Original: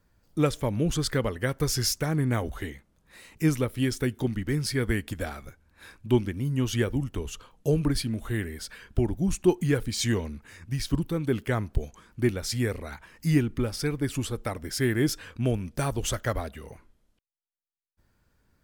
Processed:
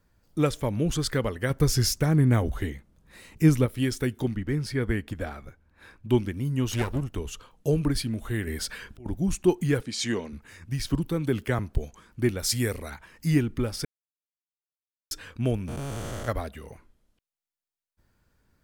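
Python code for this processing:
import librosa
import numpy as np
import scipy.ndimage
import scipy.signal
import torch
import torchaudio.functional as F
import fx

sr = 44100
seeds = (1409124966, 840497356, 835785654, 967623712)

y = fx.low_shelf(x, sr, hz=340.0, db=7.0, at=(1.5, 3.66))
y = fx.high_shelf(y, sr, hz=3700.0, db=-10.5, at=(4.33, 6.1))
y = fx.lower_of_two(y, sr, delay_ms=0.75, at=(6.71, 7.13))
y = fx.over_compress(y, sr, threshold_db=-36.0, ratio=-1.0, at=(8.47, 9.06))
y = fx.bandpass_edges(y, sr, low_hz=190.0, high_hz=7800.0, at=(9.81, 10.33))
y = fx.band_squash(y, sr, depth_pct=40, at=(10.85, 11.59))
y = fx.high_shelf(y, sr, hz=5300.0, db=10.0, at=(12.39, 12.9))
y = fx.spec_blur(y, sr, span_ms=488.0, at=(15.67, 16.27), fade=0.02)
y = fx.edit(y, sr, fx.silence(start_s=13.85, length_s=1.26), tone=tone)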